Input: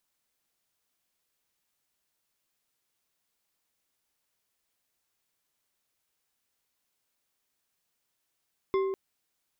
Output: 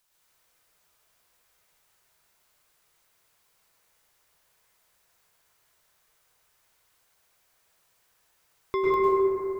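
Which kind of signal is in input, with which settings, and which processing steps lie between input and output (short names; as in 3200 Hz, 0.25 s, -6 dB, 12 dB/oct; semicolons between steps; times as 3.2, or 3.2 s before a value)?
glass hit bar, length 0.20 s, lowest mode 386 Hz, decay 1.61 s, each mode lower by 8 dB, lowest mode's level -22.5 dB
bell 250 Hz -10 dB 1.1 oct; in parallel at +1 dB: limiter -28.5 dBFS; on the sum: plate-style reverb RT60 3 s, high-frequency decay 0.25×, pre-delay 90 ms, DRR -7.5 dB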